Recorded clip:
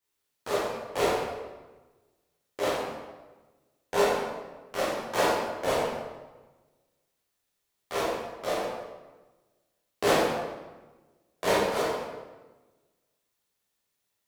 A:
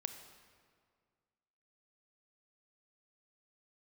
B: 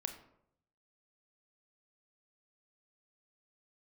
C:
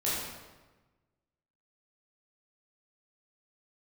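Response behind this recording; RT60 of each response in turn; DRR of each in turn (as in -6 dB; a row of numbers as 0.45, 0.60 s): C; 2.0, 0.75, 1.2 s; 7.5, 6.5, -9.0 dB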